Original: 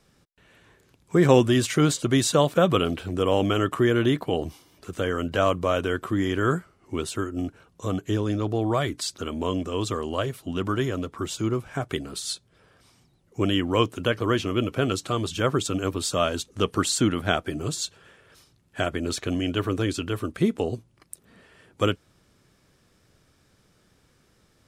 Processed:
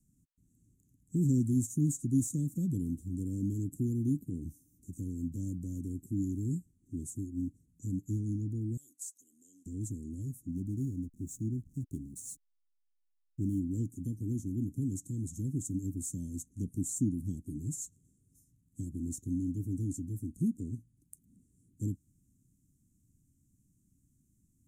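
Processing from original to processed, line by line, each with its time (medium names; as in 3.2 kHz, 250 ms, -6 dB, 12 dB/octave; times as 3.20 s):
8.77–9.66 s: Chebyshev high-pass 1.3 kHz
10.48–13.59 s: hysteresis with a dead band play -36 dBFS
whole clip: de-esser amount 45%; Chebyshev band-stop 280–6800 Hz, order 4; peaking EQ 4.8 kHz -10 dB 0.21 oct; trim -5.5 dB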